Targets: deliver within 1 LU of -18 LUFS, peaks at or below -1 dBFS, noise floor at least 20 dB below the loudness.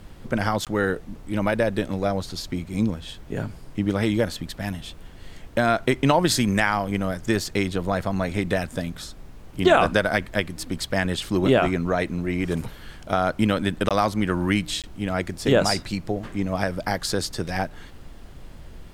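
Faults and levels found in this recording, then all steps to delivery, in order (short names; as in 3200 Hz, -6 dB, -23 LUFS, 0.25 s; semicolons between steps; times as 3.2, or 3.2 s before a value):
dropouts 3; longest dropout 17 ms; noise floor -43 dBFS; noise floor target -45 dBFS; loudness -24.5 LUFS; peak -4.5 dBFS; loudness target -18.0 LUFS
-> interpolate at 0.65/13.89/14.82, 17 ms; noise print and reduce 6 dB; gain +6.5 dB; limiter -1 dBFS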